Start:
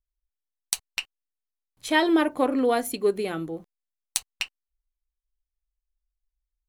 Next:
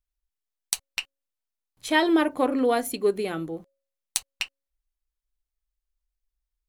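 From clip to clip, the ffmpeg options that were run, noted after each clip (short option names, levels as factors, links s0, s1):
-af "bandreject=f=274.3:t=h:w=4,bandreject=f=548.6:t=h:w=4"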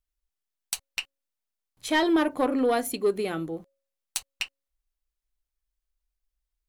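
-af "asoftclip=type=tanh:threshold=0.188"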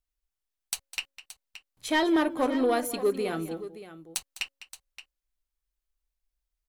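-af "aecho=1:1:204|573:0.168|0.2,volume=0.841"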